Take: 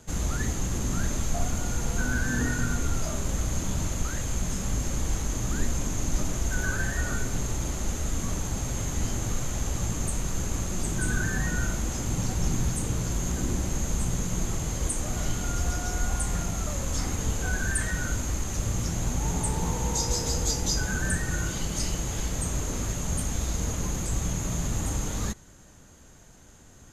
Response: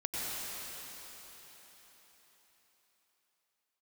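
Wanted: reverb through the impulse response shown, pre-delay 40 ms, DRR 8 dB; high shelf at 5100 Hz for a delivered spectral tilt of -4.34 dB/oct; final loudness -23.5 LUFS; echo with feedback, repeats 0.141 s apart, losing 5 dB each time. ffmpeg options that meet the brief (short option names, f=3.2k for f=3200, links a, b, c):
-filter_complex "[0:a]highshelf=f=5.1k:g=-4,aecho=1:1:141|282|423|564|705|846|987:0.562|0.315|0.176|0.0988|0.0553|0.031|0.0173,asplit=2[a][b];[1:a]atrim=start_sample=2205,adelay=40[c];[b][c]afir=irnorm=-1:irlink=0,volume=-14dB[d];[a][d]amix=inputs=2:normalize=0,volume=4.5dB"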